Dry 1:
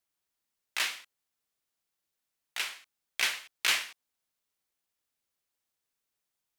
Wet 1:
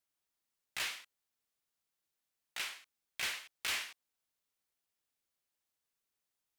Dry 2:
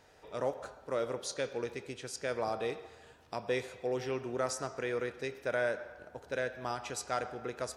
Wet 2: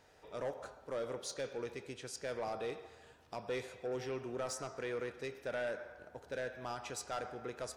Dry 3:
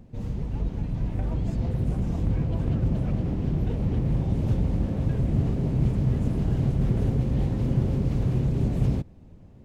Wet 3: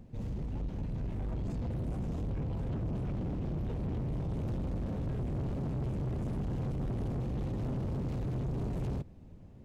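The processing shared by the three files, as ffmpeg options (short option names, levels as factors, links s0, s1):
-af "asoftclip=type=tanh:threshold=0.0376,volume=0.708"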